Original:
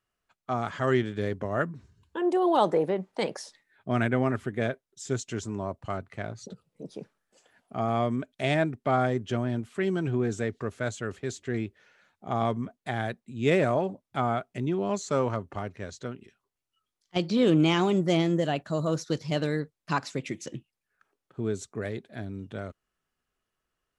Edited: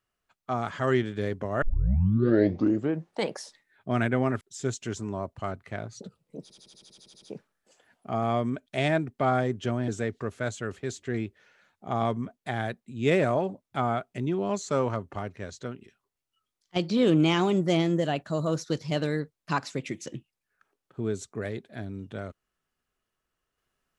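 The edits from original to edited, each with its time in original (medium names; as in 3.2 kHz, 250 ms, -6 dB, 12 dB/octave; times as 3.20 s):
1.62 s: tape start 1.61 s
4.41–4.87 s: delete
6.88 s: stutter 0.08 s, 11 plays
9.54–10.28 s: delete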